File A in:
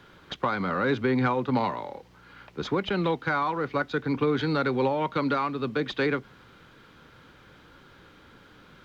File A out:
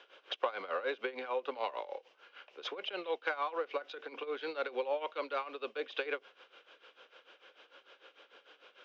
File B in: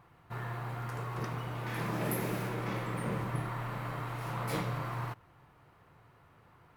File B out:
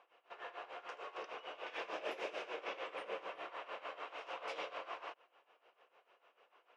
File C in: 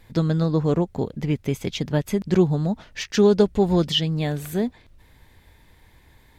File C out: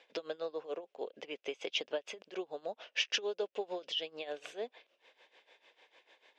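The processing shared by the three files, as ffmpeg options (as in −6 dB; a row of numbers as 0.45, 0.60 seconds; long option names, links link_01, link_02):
-af "acompressor=threshold=-25dB:ratio=6,tremolo=f=6.7:d=0.82,highpass=frequency=480:width=0.5412,highpass=frequency=480:width=1.3066,equalizer=frequency=520:width_type=q:width=4:gain=3,equalizer=frequency=910:width_type=q:width=4:gain=-6,equalizer=frequency=1300:width_type=q:width=4:gain=-5,equalizer=frequency=1900:width_type=q:width=4:gain=-6,equalizer=frequency=2800:width_type=q:width=4:gain=7,equalizer=frequency=4300:width_type=q:width=4:gain=-7,lowpass=frequency=5400:width=0.5412,lowpass=frequency=5400:width=1.3066,volume=1dB"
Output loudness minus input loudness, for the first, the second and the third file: −11.0, −9.0, −16.5 LU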